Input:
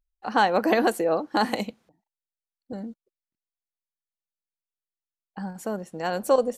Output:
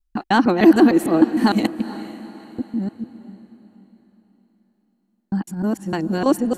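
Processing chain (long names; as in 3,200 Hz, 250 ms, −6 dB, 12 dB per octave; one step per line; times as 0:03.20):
reversed piece by piece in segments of 152 ms
pitch vibrato 9.1 Hz 31 cents
low shelf with overshoot 400 Hz +6.5 dB, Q 3
feedback delay with all-pass diffusion 451 ms, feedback 41%, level −14.5 dB
level +3.5 dB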